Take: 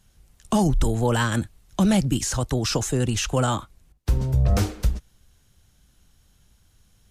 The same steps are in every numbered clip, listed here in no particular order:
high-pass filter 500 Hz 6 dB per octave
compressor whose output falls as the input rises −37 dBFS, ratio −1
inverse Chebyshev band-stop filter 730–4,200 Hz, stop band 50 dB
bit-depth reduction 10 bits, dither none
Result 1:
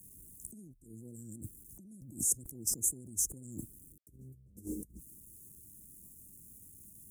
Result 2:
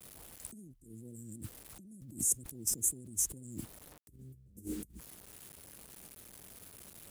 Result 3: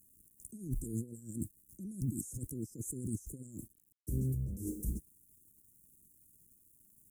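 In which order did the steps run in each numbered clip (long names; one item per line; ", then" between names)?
bit-depth reduction, then inverse Chebyshev band-stop filter, then compressor whose output falls as the input rises, then high-pass filter
inverse Chebyshev band-stop filter, then bit-depth reduction, then compressor whose output falls as the input rises, then high-pass filter
high-pass filter, then bit-depth reduction, then compressor whose output falls as the input rises, then inverse Chebyshev band-stop filter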